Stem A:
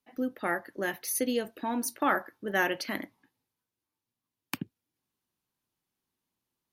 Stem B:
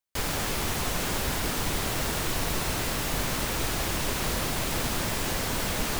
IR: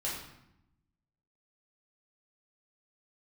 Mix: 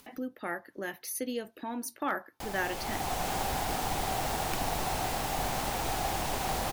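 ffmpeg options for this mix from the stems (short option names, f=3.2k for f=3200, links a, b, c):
-filter_complex "[0:a]asoftclip=type=hard:threshold=-14dB,volume=-5.5dB[a];[1:a]equalizer=f=770:w=3.3:g=15,dynaudnorm=f=120:g=11:m=8.5dB,adelay=2250,volume=-14dB[b];[a][b]amix=inputs=2:normalize=0,acompressor=mode=upward:threshold=-36dB:ratio=2.5"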